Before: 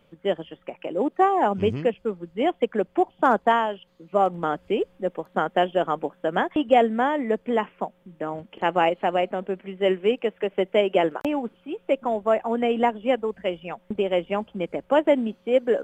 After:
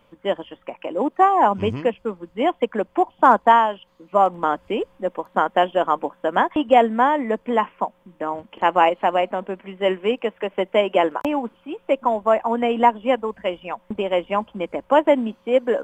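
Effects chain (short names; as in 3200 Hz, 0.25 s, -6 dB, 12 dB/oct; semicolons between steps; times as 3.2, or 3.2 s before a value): thirty-one-band EQ 160 Hz -10 dB, 400 Hz -5 dB, 1000 Hz +9 dB, 4000 Hz -3 dB; gain +3 dB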